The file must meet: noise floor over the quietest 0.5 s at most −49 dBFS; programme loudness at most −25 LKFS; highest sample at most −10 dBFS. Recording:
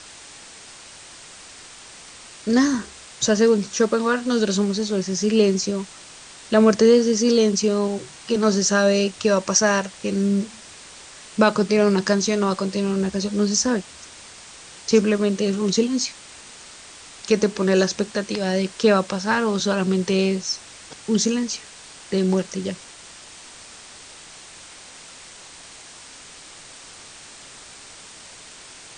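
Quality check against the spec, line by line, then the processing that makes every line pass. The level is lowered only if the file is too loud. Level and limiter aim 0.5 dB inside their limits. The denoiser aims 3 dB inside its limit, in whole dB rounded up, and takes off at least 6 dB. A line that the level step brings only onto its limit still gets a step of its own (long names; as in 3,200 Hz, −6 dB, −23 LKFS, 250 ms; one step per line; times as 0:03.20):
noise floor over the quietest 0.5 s −43 dBFS: out of spec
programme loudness −20.5 LKFS: out of spec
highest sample −3.0 dBFS: out of spec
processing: broadband denoise 6 dB, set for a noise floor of −43 dBFS
level −5 dB
brickwall limiter −10.5 dBFS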